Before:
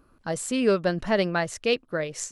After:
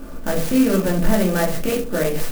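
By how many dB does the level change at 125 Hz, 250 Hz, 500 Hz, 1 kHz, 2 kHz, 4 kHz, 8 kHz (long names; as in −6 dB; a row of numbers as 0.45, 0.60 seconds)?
+9.0, +9.5, +3.5, +3.0, +1.5, +1.0, +3.5 decibels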